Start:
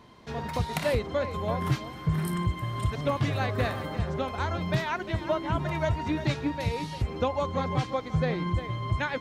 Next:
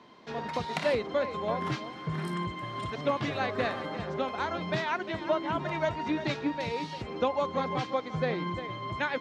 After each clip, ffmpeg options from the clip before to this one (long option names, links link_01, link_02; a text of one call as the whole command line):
ffmpeg -i in.wav -filter_complex "[0:a]acrossover=split=170 6800:gain=0.1 1 0.0794[link_01][link_02][link_03];[link_01][link_02][link_03]amix=inputs=3:normalize=0" out.wav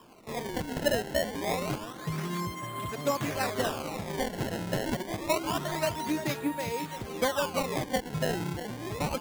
ffmpeg -i in.wav -af "acrusher=samples=21:mix=1:aa=0.000001:lfo=1:lforange=33.6:lforate=0.27" out.wav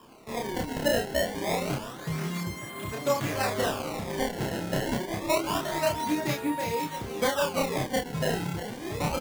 ffmpeg -i in.wav -filter_complex "[0:a]asplit=2[link_01][link_02];[link_02]adelay=30,volume=-2dB[link_03];[link_01][link_03]amix=inputs=2:normalize=0" out.wav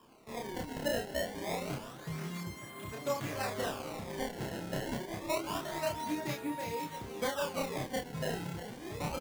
ffmpeg -i in.wav -af "aecho=1:1:226:0.106,volume=-8dB" out.wav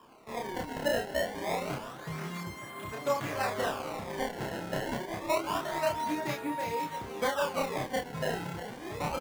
ffmpeg -i in.wav -af "equalizer=frequency=1100:width=0.49:gain=6.5" out.wav